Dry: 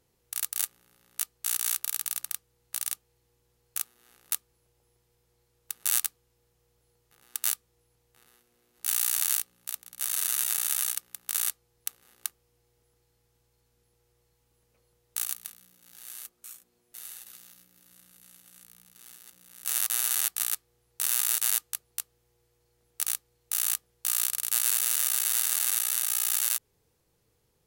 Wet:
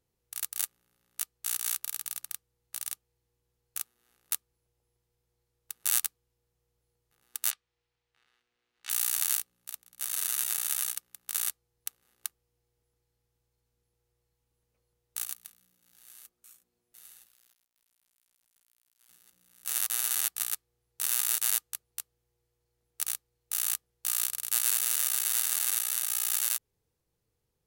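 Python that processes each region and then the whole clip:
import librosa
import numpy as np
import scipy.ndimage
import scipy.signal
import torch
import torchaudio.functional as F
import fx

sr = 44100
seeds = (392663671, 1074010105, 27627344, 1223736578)

y = fx.chain(x, sr, fx.lowpass(hz=3100.0, slope=12),
    fx.tilt_shelf(db=-9.0, hz=940.0), at=(7.51, 8.9))
y = fx.chain(y, sr, fx.level_steps(step_db=9),
    fx.sample_gate(floor_db=-51.0), at=(17.26, 19.09))
y = fx.low_shelf(y, sr, hz=140.0, db=4.5)
y = fx.upward_expand(y, sr, threshold_db=-44.0, expansion=1.5)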